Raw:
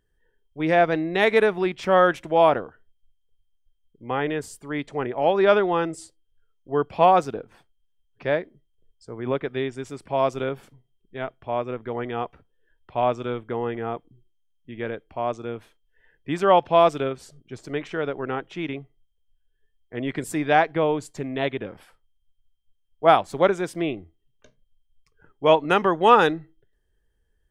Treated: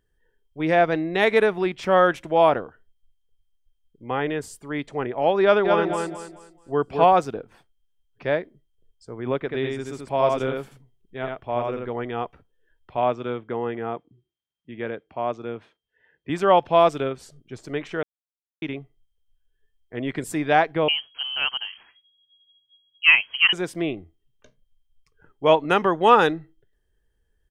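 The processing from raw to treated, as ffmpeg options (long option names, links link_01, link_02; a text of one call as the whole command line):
ffmpeg -i in.wav -filter_complex "[0:a]asplit=3[link_01][link_02][link_03];[link_01]afade=type=out:start_time=5.64:duration=0.02[link_04];[link_02]aecho=1:1:215|430|645|860:0.596|0.167|0.0467|0.0131,afade=type=in:start_time=5.64:duration=0.02,afade=type=out:start_time=7.14:duration=0.02[link_05];[link_03]afade=type=in:start_time=7.14:duration=0.02[link_06];[link_04][link_05][link_06]amix=inputs=3:normalize=0,asettb=1/sr,asplit=3[link_07][link_08][link_09];[link_07]atrim=end=9.404[link_10];[link_08]atrim=start=9.4:end=11.9,asetpts=PTS-STARTPTS,afade=type=in:duration=0.004:curve=qsin,afade=type=out:start_time=2.496:duration=0.004:curve=qsin,aecho=1:1:84:0.708,atrim=end_sample=110250[link_11];[link_09]atrim=start=11.896[link_12];[link_10][link_11]acrossfade=duration=0.004:curve1=hsin:curve2=qsin[link_13];[link_13][link_12]acrossfade=duration=0.004:curve1=qsin:curve2=hsin,asettb=1/sr,asplit=3[link_14][link_15][link_16];[link_14]atrim=end=12.974[link_17];[link_15]atrim=start=12.97:end=16.3,asetpts=PTS-STARTPTS,afade=type=in:duration=0.004:curve=qsin,afade=type=out:start_time=3.326:duration=0.004:curve=qsin,highpass=110,lowpass=4300[link_18];[link_16]atrim=start=16.296[link_19];[link_17][link_18]acrossfade=duration=0.004:curve1=hsin:curve2=qsin[link_20];[link_20][link_19]acrossfade=duration=0.004:curve1=qsin:curve2=hsin,asettb=1/sr,asplit=3[link_21][link_22][link_23];[link_21]atrim=end=20.884[link_24];[link_22]atrim=start=20.88:end=23.53,asetpts=PTS-STARTPTS,afade=type=in:duration=0.004:curve=qsin,afade=type=out:start_time=2.646:duration=0.004:curve=qsin,lowpass=frequency=2800:width_type=q:width=0.5098,lowpass=frequency=2800:width_type=q:width=0.6013,lowpass=frequency=2800:width_type=q:width=0.9,lowpass=frequency=2800:width_type=q:width=2.563,afreqshift=-3300[link_25];[link_23]atrim=start=23.526[link_26];[link_24][link_25]acrossfade=duration=0.004:curve1=hsin:curve2=qsin[link_27];[link_27][link_26]acrossfade=duration=0.004:curve1=qsin:curve2=hsin,asplit=3[link_28][link_29][link_30];[link_28]atrim=end=18.03,asetpts=PTS-STARTPTS,afade=type=out:start_time=18.026:duration=0.004:curve=hsin[link_31];[link_29]atrim=start=18.03:end=18.62,asetpts=PTS-STARTPTS,volume=0[link_32];[link_30]atrim=start=18.62,asetpts=PTS-STARTPTS,afade=type=in:duration=0.004:curve=hsin[link_33];[link_31][link_32][link_33]concat=n=3:v=0:a=1" out.wav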